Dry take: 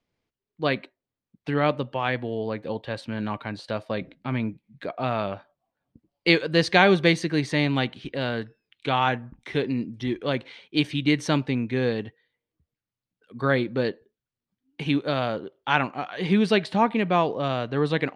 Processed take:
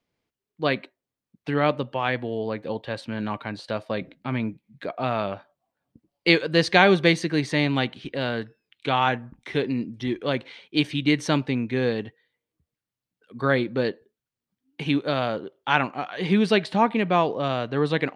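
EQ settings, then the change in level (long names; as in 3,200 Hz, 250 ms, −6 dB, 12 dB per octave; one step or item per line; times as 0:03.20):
low-shelf EQ 68 Hz −7.5 dB
+1.0 dB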